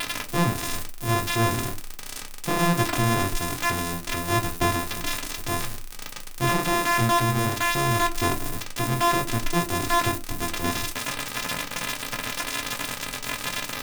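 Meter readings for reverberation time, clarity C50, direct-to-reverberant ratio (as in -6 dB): no single decay rate, 18.5 dB, 2.0 dB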